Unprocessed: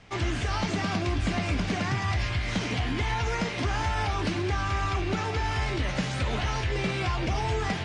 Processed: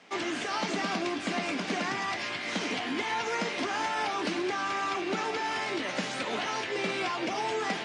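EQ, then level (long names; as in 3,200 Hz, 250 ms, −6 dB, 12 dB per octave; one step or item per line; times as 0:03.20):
high-pass filter 230 Hz 24 dB per octave
0.0 dB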